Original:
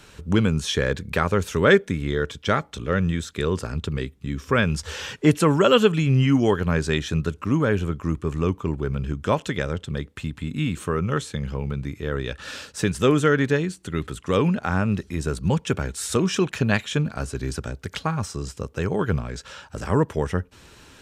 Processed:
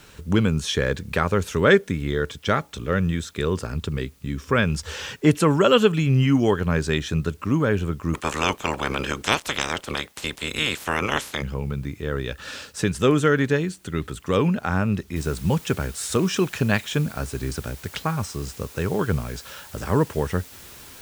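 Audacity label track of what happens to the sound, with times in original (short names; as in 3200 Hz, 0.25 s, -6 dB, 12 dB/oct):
8.130000	11.410000	spectral limiter ceiling under each frame's peak by 30 dB
15.160000	15.160000	noise floor step -60 dB -45 dB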